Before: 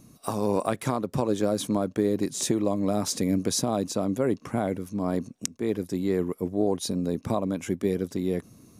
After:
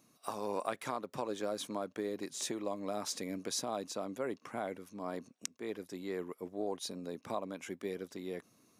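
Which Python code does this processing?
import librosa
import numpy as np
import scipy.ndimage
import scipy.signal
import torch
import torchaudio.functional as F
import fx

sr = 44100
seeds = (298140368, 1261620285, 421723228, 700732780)

y = fx.highpass(x, sr, hz=980.0, slope=6)
y = fx.peak_eq(y, sr, hz=11000.0, db=-7.5, octaves=1.9)
y = y * librosa.db_to_amplitude(-4.0)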